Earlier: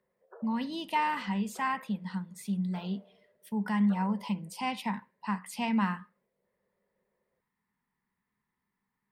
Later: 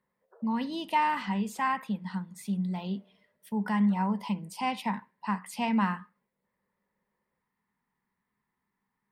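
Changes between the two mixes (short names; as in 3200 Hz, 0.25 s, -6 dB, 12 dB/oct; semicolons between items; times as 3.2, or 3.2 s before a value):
background -10.5 dB; master: add bell 640 Hz +3.5 dB 2.4 oct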